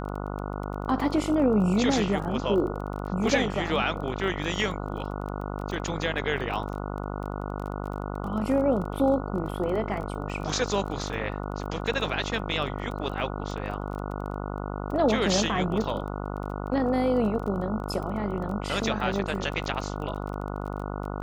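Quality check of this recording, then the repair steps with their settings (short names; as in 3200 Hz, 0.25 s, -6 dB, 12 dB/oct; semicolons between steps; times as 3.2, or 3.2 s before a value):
buzz 50 Hz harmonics 29 -33 dBFS
crackle 21/s -34 dBFS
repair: de-click; de-hum 50 Hz, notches 29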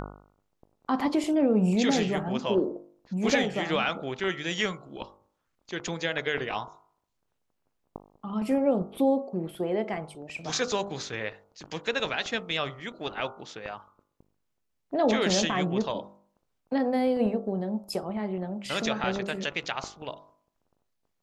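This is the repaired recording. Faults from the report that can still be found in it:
none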